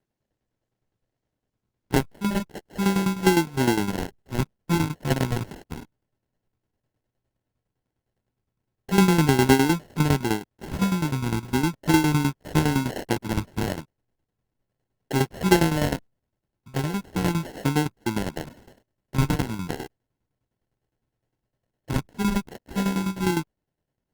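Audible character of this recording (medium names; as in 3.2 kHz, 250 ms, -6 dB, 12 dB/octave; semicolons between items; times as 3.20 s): phasing stages 12, 0.34 Hz, lowest notch 450–1200 Hz; aliases and images of a low sample rate 1.2 kHz, jitter 0%; tremolo saw down 9.8 Hz, depth 75%; Opus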